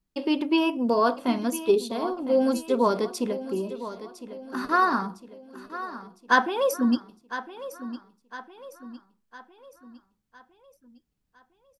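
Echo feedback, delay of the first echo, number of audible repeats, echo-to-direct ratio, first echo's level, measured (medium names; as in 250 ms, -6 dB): 47%, 1007 ms, 4, -12.5 dB, -13.5 dB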